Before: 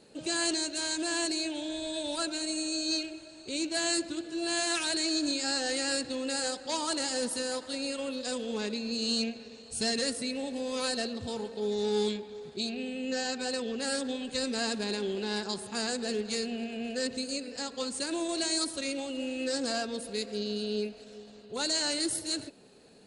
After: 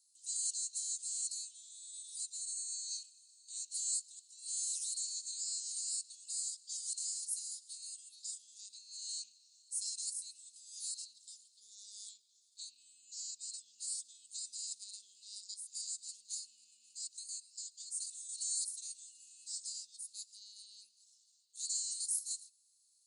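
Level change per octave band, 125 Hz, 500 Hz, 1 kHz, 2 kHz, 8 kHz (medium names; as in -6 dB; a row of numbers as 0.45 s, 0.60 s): under -40 dB, under -40 dB, under -40 dB, under -40 dB, -1.5 dB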